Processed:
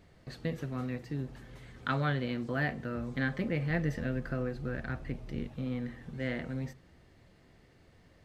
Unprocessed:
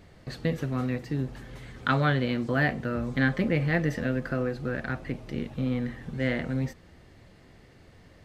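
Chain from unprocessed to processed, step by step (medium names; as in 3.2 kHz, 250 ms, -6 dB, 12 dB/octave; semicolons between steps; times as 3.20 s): 3.70–5.49 s: bass shelf 88 Hz +11 dB; on a send: reverberation RT60 0.70 s, pre-delay 3 ms, DRR 21 dB; on the sum: trim -7 dB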